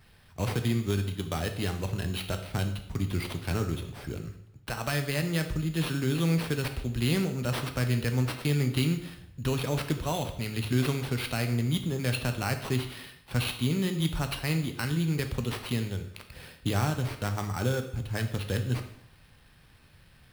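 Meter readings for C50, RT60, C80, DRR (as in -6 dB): 10.0 dB, 0.75 s, 13.0 dB, 6.0 dB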